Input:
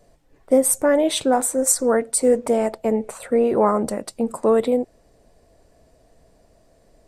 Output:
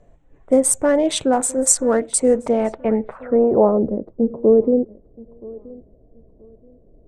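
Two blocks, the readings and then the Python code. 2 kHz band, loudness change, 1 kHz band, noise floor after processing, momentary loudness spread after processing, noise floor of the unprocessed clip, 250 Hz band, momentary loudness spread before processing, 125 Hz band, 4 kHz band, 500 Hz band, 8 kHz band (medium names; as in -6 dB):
-1.0 dB, +2.0 dB, -1.0 dB, -52 dBFS, 9 LU, -58 dBFS, +3.0 dB, 7 LU, +4.0 dB, 0.0 dB, +2.0 dB, +2.5 dB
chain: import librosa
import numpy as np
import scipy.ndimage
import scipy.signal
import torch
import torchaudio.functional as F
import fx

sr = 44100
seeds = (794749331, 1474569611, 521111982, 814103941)

y = fx.wiener(x, sr, points=9)
y = fx.low_shelf(y, sr, hz=170.0, db=7.0)
y = fx.echo_feedback(y, sr, ms=976, feedback_pct=25, wet_db=-22.0)
y = fx.filter_sweep_lowpass(y, sr, from_hz=7800.0, to_hz=410.0, start_s=2.3, end_s=3.88, q=1.7)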